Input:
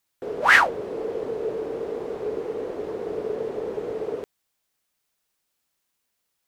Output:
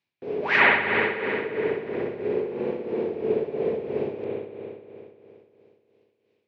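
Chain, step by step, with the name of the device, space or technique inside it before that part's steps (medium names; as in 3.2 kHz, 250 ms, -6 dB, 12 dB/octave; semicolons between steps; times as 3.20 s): combo amplifier with spring reverb and tremolo (spring tank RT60 3 s, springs 59 ms, chirp 45 ms, DRR -3.5 dB; tremolo 3 Hz, depth 61%; cabinet simulation 86–4600 Hz, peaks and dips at 99 Hz +9 dB, 150 Hz +7 dB, 230 Hz +9 dB, 380 Hz +4 dB, 1.3 kHz -7 dB, 2.4 kHz +9 dB); trim -3 dB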